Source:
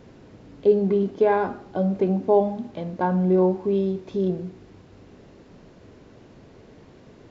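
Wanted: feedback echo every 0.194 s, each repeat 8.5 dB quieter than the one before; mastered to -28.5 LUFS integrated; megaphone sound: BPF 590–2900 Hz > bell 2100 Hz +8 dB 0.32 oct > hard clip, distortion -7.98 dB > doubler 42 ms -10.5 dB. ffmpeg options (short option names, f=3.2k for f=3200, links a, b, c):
-filter_complex "[0:a]highpass=590,lowpass=2.9k,equalizer=f=2.1k:t=o:w=0.32:g=8,aecho=1:1:194|388|582|776:0.376|0.143|0.0543|0.0206,asoftclip=type=hard:threshold=-24.5dB,asplit=2[a][b];[b]adelay=42,volume=-10.5dB[c];[a][c]amix=inputs=2:normalize=0,volume=3dB"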